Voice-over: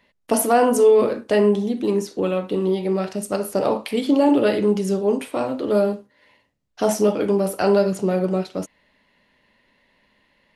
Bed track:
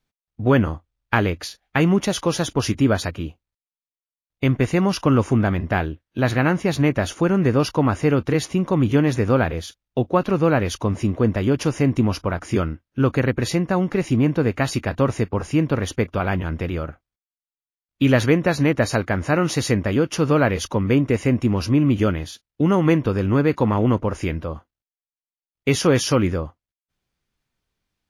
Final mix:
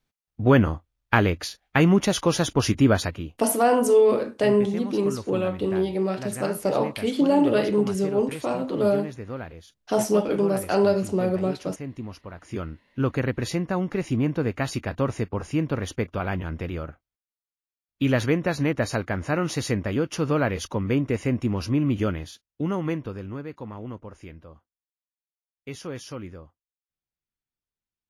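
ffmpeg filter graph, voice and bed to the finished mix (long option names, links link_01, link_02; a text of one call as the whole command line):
ffmpeg -i stem1.wav -i stem2.wav -filter_complex "[0:a]adelay=3100,volume=-3dB[link_01];[1:a]volume=10.5dB,afade=type=out:start_time=2.98:duration=0.51:silence=0.158489,afade=type=in:start_time=12.32:duration=0.68:silence=0.281838,afade=type=out:start_time=22.16:duration=1.28:silence=0.237137[link_02];[link_01][link_02]amix=inputs=2:normalize=0" out.wav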